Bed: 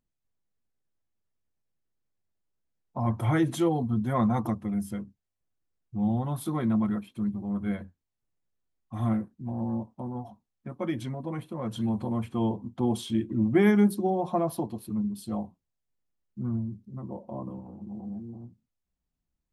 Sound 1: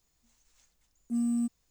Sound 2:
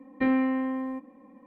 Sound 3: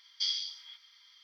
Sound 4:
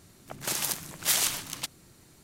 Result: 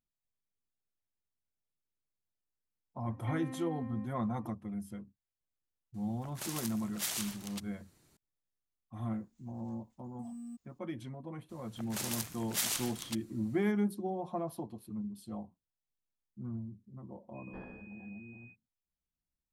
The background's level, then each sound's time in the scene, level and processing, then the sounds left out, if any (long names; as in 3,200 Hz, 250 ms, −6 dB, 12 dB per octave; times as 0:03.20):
bed −10 dB
0:03.07: mix in 2 −8 dB + downward compressor 2 to 1, threshold −40 dBFS
0:05.94: mix in 4 −11 dB
0:09.09: mix in 1 −10.5 dB + downward compressor, threshold −32 dBFS
0:11.49: mix in 4 −8 dB
0:17.33: mix in 3 −14 dB, fades 0.05 s + switching amplifier with a slow clock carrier 2,500 Hz